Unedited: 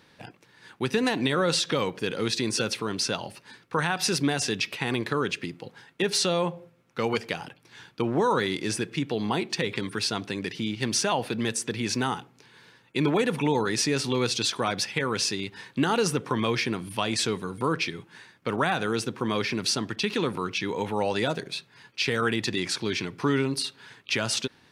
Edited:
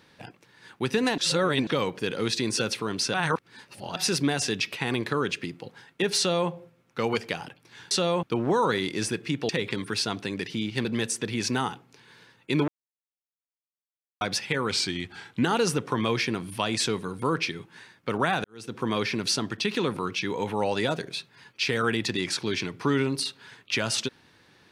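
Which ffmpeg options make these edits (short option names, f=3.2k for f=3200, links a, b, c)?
-filter_complex "[0:a]asplit=14[a][b][c][d][e][f][g][h][i][j][k][l][m][n];[a]atrim=end=1.182[o];[b]atrim=start=1.178:end=1.672,asetpts=PTS-STARTPTS,areverse[p];[c]atrim=start=1.668:end=3.142[q];[d]atrim=start=3.138:end=3.962,asetpts=PTS-STARTPTS,areverse[r];[e]atrim=start=3.958:end=7.912[s];[f]atrim=start=6.178:end=6.502[t];[g]atrim=start=7.908:end=9.172[u];[h]atrim=start=9.538:end=10.902[v];[i]atrim=start=11.308:end=13.14,asetpts=PTS-STARTPTS,afade=t=out:st=1.828:d=0.004:c=hsin[w];[j]atrim=start=13.14:end=14.67,asetpts=PTS-STARTPTS,volume=0[x];[k]atrim=start=14.67:end=15.174,asetpts=PTS-STARTPTS,afade=t=in:d=0.004:c=hsin[y];[l]atrim=start=15.17:end=15.82,asetpts=PTS-STARTPTS,asetrate=39690,aresample=44100[z];[m]atrim=start=15.816:end=18.83,asetpts=PTS-STARTPTS,afade=t=out:st=3.01:d=0.004:c=hsin[aa];[n]atrim=start=18.83,asetpts=PTS-STARTPTS,afade=t=in:d=0.34:c=qua[ab];[o][p]acrossfade=d=0.004:c1=hsin:c2=hsin[ac];[ac][q]acrossfade=d=0.004:c1=hsin:c2=hsin[ad];[ad][r]acrossfade=d=0.004:c1=hsin:c2=hsin[ae];[ae][s]acrossfade=d=0.004:c1=hsin:c2=hsin[af];[af][t]acrossfade=d=0.004:c1=hsin:c2=hsin[ag];[ag][u]acrossfade=d=0.004:c1=hsin:c2=hsin[ah];[ah][v]acrossfade=d=0.004:c1=hsin:c2=hsin[ai];[w][x][y]concat=n=3:v=0:a=1[aj];[ai][aj]acrossfade=d=0.004:c1=hsin:c2=hsin[ak];[ak][z]acrossfade=d=0.004:c1=hsin:c2=hsin[al];[aa][ab]concat=n=2:v=0:a=1[am];[al][am]acrossfade=d=0.004:c1=hsin:c2=hsin"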